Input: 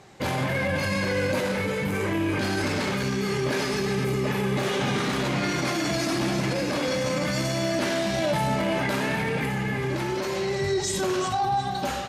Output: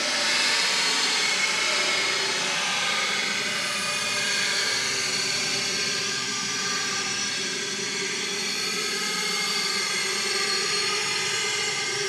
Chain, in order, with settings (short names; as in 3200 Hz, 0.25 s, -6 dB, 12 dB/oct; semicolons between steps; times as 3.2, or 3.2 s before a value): weighting filter ITU-R 468; Paulstretch 20×, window 0.05 s, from 2.79